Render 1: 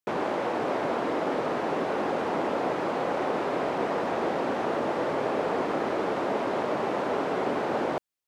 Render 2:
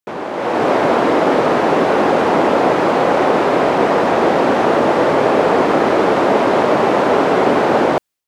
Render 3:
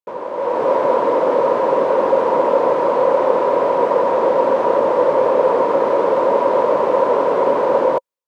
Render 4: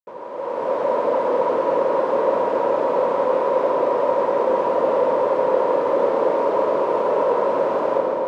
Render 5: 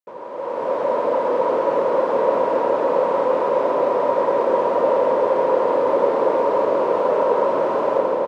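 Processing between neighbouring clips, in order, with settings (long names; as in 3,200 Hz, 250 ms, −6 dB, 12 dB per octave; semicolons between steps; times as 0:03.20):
automatic gain control gain up to 12.5 dB; level +2.5 dB
hollow resonant body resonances 530/960 Hz, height 18 dB, ringing for 30 ms; level −13 dB
convolution reverb RT60 4.4 s, pre-delay 50 ms, DRR −2 dB; level −8 dB
single-tap delay 827 ms −7 dB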